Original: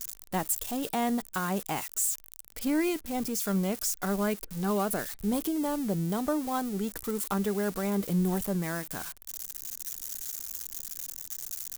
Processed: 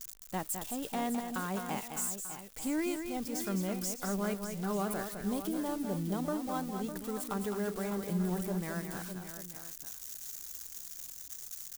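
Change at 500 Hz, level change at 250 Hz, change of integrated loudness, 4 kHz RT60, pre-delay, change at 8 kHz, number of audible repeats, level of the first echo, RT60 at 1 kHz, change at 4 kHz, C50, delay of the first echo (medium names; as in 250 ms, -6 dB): -5.0 dB, -5.0 dB, -5.0 dB, no reverb, no reverb, -6.0 dB, 3, -7.0 dB, no reverb, -5.0 dB, no reverb, 210 ms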